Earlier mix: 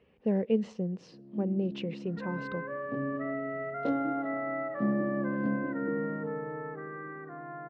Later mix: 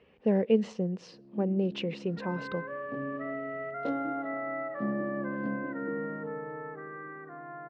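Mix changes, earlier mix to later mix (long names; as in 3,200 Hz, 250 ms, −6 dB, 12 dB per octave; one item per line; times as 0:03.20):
speech +5.5 dB
master: add low-shelf EQ 320 Hz −5.5 dB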